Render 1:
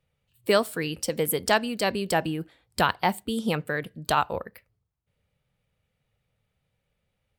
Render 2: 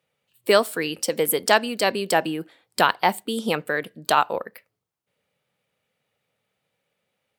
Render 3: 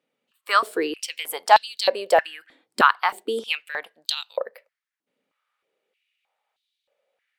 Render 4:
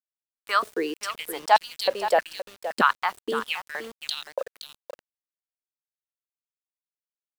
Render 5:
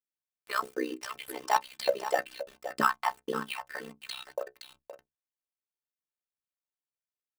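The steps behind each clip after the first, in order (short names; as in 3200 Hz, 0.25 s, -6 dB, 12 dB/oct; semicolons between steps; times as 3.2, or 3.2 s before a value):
HPF 260 Hz 12 dB/oct; gain +4.5 dB
high shelf 9600 Hz -9.5 dB; stepped high-pass 3.2 Hz 260–3800 Hz; gain -3.5 dB
resonant low shelf 130 Hz -10.5 dB, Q 3; echo 0.52 s -11 dB; sample gate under -35.5 dBFS; gain -4 dB
in parallel at -7 dB: sample-rate reducer 6500 Hz, jitter 0%; on the sum: metallic resonator 65 Hz, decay 0.28 s, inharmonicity 0.03; AM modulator 64 Hz, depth 80%; gain +2.5 dB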